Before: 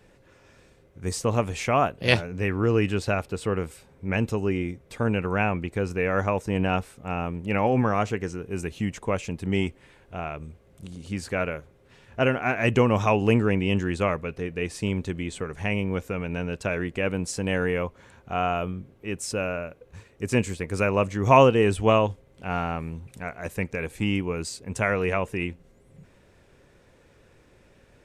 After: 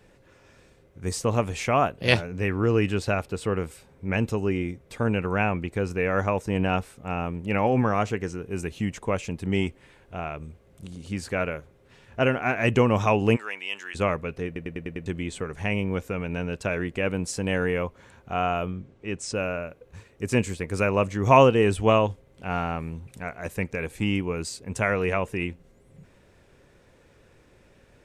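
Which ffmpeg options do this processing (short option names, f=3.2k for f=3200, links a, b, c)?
-filter_complex "[0:a]asplit=3[a][b][c];[a]afade=t=out:st=13.35:d=0.02[d];[b]highpass=1.2k,afade=t=in:st=13.35:d=0.02,afade=t=out:st=13.94:d=0.02[e];[c]afade=t=in:st=13.94:d=0.02[f];[d][e][f]amix=inputs=3:normalize=0,asettb=1/sr,asplit=3[g][h][i];[g]atrim=end=18.664[j];[h]atrim=start=18.66:end=19.35,asetpts=PTS-STARTPTS,afade=t=in:d=0.004:c=qsin,afade=t=out:st=0.686:d=0.004:c=qsin,lowpass=f=8.1k:w=0.5412,lowpass=f=8.1k:w=1.3066[k];[i]atrim=start=19.346[l];[j][k]acrossfade=d=0.004:c1=hsin:c2=qsin[m];[m][l]acrossfade=d=0.004:c1=qsin:c2=hsin,asplit=7[n][o][p][q][r][s][t];[n]atrim=end=14.562[u];[o]atrim=start=14.458:end=14.562[v];[p]atrim=start=14.458:end=14.562[w];[q]atrim=start=14.458:end=14.562[x];[r]atrim=start=14.458:end=14.562[y];[s]atrim=start=14.458:end=14.562[z];[t]atrim=start=15.058[aa];[u][v]acrossfade=d=0.004:c1=hsin:c2=hsin[ab];[ab][w]acrossfade=d=0.004:c1=hsin:c2=hsin[ac];[ac][x]acrossfade=d=0.004:c1=hsin:c2=hsin[ad];[ad][y]acrossfade=d=0.004:c1=hsin:c2=hsin[ae];[ae][z]acrossfade=d=0.004:c1=hsin:c2=hsin[af];[af][aa]acrossfade=d=0.004:c1=hsin:c2=hsin"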